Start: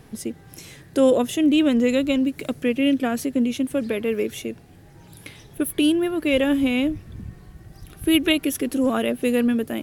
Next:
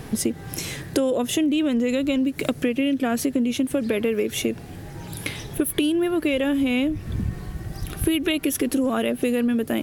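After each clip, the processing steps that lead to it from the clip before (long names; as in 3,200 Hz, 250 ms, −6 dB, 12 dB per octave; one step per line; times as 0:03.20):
in parallel at +2 dB: brickwall limiter −15.5 dBFS, peak gain reduction 10 dB
on the sum: downward compressor 10 to 1, threshold −23 dBFS, peak gain reduction 15 dB
level +4 dB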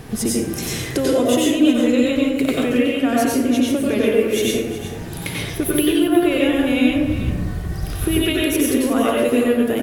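single-tap delay 367 ms −13 dB
dense smooth reverb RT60 0.83 s, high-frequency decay 0.6×, pre-delay 80 ms, DRR −4.5 dB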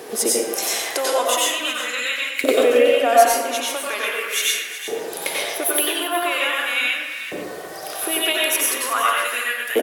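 auto-filter high-pass saw up 0.41 Hz 420–1,900 Hz
bass and treble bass −5 dB, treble +4 dB
far-end echo of a speakerphone 120 ms, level −8 dB
level +1.5 dB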